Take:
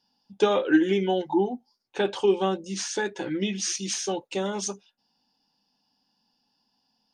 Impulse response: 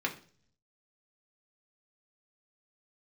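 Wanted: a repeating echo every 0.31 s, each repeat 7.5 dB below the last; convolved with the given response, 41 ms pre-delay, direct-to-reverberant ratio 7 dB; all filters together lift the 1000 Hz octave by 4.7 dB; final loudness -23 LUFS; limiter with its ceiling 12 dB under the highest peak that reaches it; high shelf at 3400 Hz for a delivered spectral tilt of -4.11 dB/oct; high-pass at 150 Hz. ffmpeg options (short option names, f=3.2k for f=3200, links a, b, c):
-filter_complex "[0:a]highpass=150,equalizer=f=1k:t=o:g=7,highshelf=f=3.4k:g=-8,alimiter=limit=-19.5dB:level=0:latency=1,aecho=1:1:310|620|930|1240|1550:0.422|0.177|0.0744|0.0312|0.0131,asplit=2[a][b];[1:a]atrim=start_sample=2205,adelay=41[c];[b][c]afir=irnorm=-1:irlink=0,volume=-13.5dB[d];[a][d]amix=inputs=2:normalize=0,volume=6dB"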